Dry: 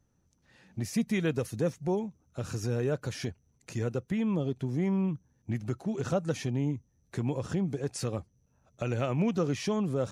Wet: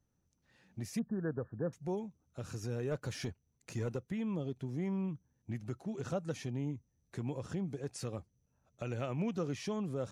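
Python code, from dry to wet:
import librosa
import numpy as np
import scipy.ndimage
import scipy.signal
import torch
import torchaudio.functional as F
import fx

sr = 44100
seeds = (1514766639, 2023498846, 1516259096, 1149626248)

y = fx.brickwall_lowpass(x, sr, high_hz=1800.0, at=(0.99, 1.73))
y = fx.leveller(y, sr, passes=1, at=(2.91, 3.97))
y = y * librosa.db_to_amplitude(-7.5)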